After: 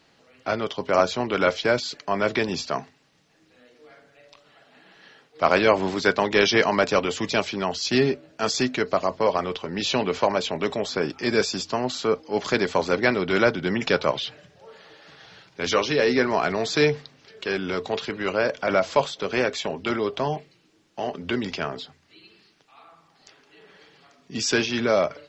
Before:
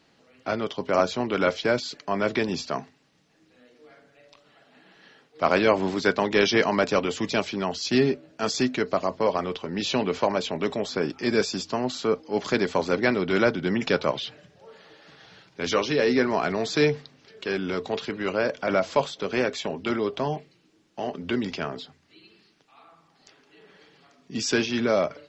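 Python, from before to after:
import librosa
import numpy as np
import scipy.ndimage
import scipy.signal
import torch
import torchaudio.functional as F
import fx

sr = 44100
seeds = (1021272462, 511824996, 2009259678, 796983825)

y = fx.peak_eq(x, sr, hz=240.0, db=-4.0, octaves=1.5)
y = y * librosa.db_to_amplitude(3.0)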